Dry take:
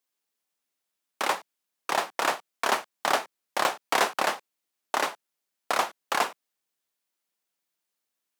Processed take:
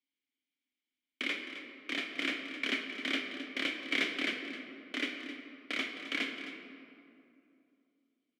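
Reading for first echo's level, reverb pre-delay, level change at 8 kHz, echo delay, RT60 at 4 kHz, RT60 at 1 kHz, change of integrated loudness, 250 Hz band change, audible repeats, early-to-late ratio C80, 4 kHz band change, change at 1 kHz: -12.5 dB, 16 ms, -17.0 dB, 0.263 s, 1.4 s, 2.5 s, -7.5 dB, +3.5 dB, 1, 5.5 dB, -2.5 dB, -22.0 dB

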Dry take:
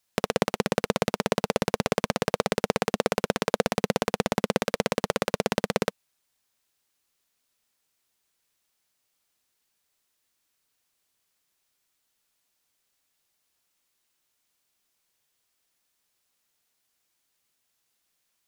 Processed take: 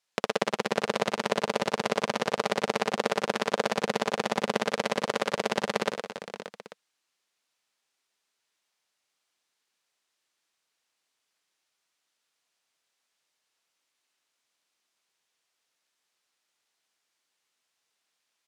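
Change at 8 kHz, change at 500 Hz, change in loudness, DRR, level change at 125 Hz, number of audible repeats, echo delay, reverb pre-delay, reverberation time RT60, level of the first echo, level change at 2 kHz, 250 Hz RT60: -3.5 dB, -2.0 dB, -1.5 dB, none, -7.5 dB, 5, 69 ms, none, none, -14.5 dB, +0.5 dB, none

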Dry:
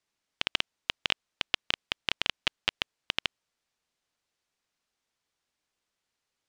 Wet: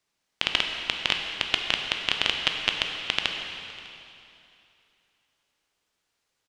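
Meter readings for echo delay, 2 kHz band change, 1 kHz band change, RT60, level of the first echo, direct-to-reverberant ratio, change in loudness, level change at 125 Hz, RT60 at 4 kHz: 0.601 s, +6.0 dB, +6.0 dB, 2.8 s, -22.5 dB, 2.5 dB, +5.5 dB, +5.5 dB, 2.6 s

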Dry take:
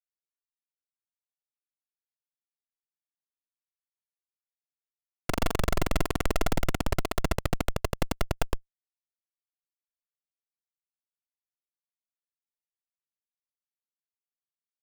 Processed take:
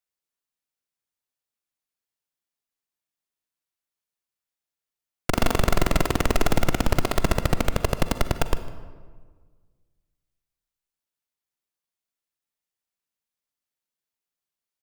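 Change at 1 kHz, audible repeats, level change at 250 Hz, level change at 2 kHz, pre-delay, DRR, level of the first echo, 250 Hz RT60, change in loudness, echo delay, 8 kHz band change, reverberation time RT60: +6.0 dB, 1, +6.0 dB, +6.0 dB, 38 ms, 10.5 dB, -21.0 dB, 1.8 s, +6.0 dB, 0.152 s, +5.5 dB, 1.6 s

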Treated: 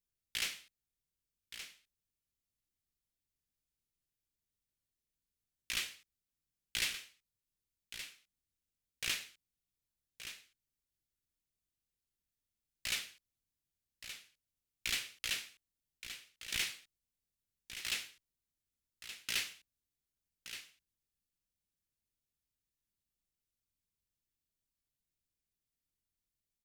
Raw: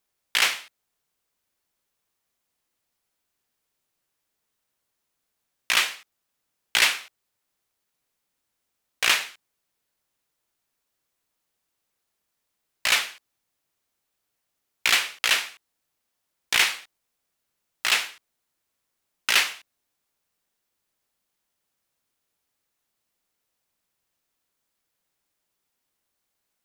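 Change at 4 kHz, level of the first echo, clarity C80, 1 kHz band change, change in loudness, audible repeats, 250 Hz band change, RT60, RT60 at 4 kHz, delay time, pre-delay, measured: -14.5 dB, -11.0 dB, none, -23.5 dB, -17.0 dB, 1, -11.0 dB, none, none, 1.173 s, none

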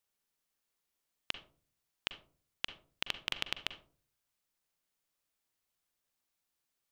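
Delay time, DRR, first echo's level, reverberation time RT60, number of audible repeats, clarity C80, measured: none, 10.0 dB, none, 0.45 s, none, 17.5 dB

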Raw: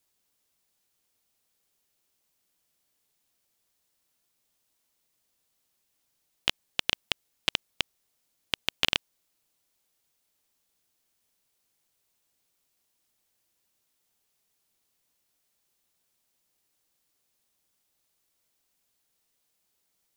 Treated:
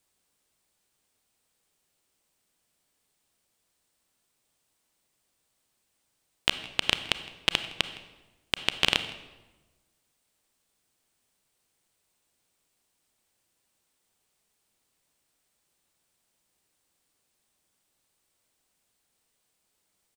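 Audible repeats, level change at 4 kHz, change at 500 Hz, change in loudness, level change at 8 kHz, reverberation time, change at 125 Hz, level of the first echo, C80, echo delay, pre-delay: 1, +2.0 dB, +4.0 dB, +2.0 dB, +1.5 dB, 1.2 s, +4.0 dB, -21.0 dB, 13.0 dB, 0.162 s, 28 ms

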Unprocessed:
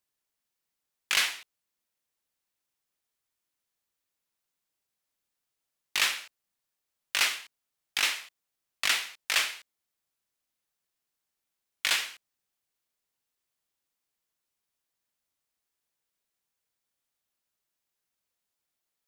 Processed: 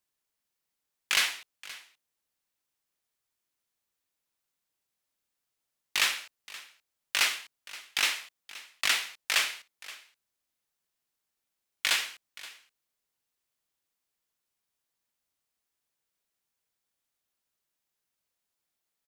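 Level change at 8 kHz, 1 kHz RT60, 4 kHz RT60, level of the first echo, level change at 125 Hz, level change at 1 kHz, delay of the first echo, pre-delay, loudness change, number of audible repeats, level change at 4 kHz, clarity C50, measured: 0.0 dB, none, none, -18.5 dB, n/a, 0.0 dB, 0.524 s, none, 0.0 dB, 1, 0.0 dB, none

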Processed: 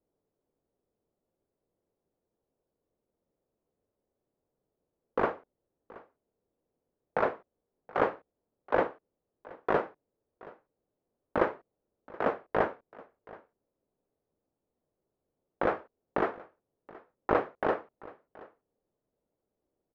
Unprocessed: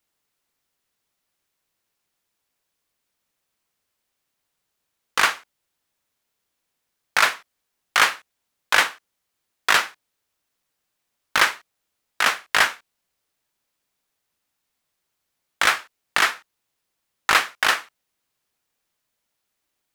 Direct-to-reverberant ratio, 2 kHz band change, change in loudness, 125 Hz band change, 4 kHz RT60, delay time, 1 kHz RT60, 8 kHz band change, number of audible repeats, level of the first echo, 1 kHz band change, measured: none, -18.5 dB, -11.5 dB, n/a, none, 0.725 s, none, under -40 dB, 1, -21.5 dB, -8.5 dB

